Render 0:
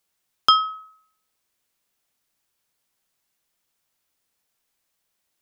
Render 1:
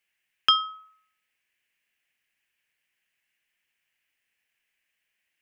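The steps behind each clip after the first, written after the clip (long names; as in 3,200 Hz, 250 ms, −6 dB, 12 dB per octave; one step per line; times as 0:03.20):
flat-topped bell 2,200 Hz +16 dB 1.1 octaves
level −8.5 dB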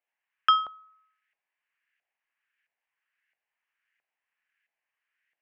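auto-filter band-pass saw up 1.5 Hz 680–1,800 Hz
level +4.5 dB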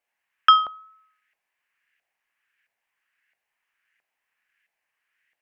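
tape wow and flutter 16 cents
level +6.5 dB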